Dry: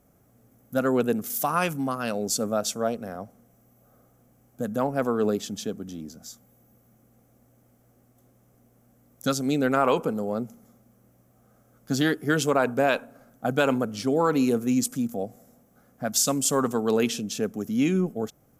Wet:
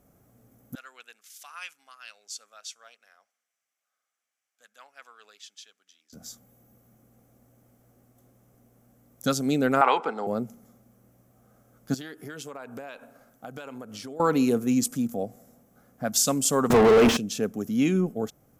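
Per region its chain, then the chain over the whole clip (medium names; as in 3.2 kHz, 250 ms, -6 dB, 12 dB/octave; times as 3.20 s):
0.75–6.13 s: ladder band-pass 2.8 kHz, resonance 20% + treble shelf 4.4 kHz +10.5 dB
9.81–10.27 s: cabinet simulation 460–6900 Hz, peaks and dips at 550 Hz -7 dB, 830 Hz +10 dB, 1.4 kHz +5 dB, 2 kHz +10 dB, 3.7 kHz +6 dB, 6.5 kHz -10 dB + three bands compressed up and down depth 40%
11.94–14.20 s: bass shelf 430 Hz -7 dB + compression 12:1, threshold -35 dBFS + hard clipper -28 dBFS
16.70–17.17 s: jump at every zero crossing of -29 dBFS + overdrive pedal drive 39 dB, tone 1.2 kHz, clips at -9.5 dBFS
whole clip: none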